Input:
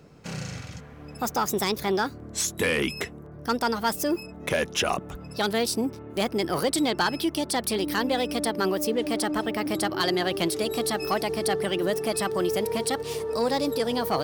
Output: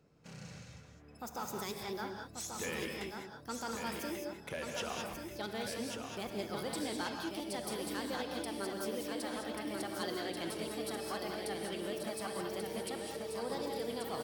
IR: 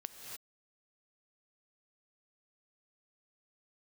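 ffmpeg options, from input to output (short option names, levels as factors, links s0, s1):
-filter_complex "[0:a]aecho=1:1:1136|2272|3408|4544|5680|6816:0.531|0.26|0.127|0.0625|0.0306|0.015[s0];[1:a]atrim=start_sample=2205,asetrate=61740,aresample=44100[s1];[s0][s1]afir=irnorm=-1:irlink=0,volume=0.376"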